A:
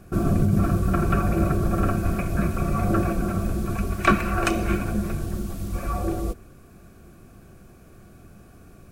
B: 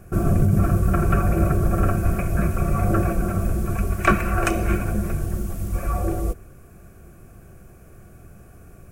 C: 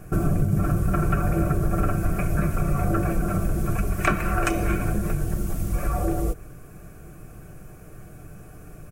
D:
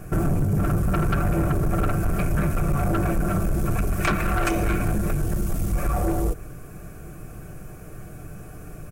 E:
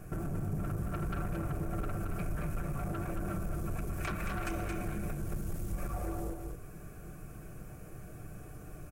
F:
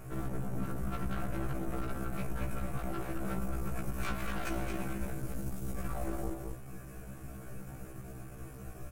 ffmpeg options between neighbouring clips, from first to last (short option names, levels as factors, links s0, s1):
-af "equalizer=f=250:t=o:w=1:g=-7,equalizer=f=1000:t=o:w=1:g=-4,equalizer=f=4000:t=o:w=1:g=-11,volume=1.68"
-af "aecho=1:1:6.6:0.43,acompressor=threshold=0.0708:ratio=2.5,volume=1.33"
-af "asoftclip=type=tanh:threshold=0.0944,volume=1.58"
-af "acompressor=threshold=0.0501:ratio=4,aecho=1:1:223:0.562,volume=0.355"
-af "aeval=exprs='clip(val(0),-1,0.00376)':c=same,afftfilt=real='re*1.73*eq(mod(b,3),0)':imag='im*1.73*eq(mod(b,3),0)':win_size=2048:overlap=0.75,volume=1.88"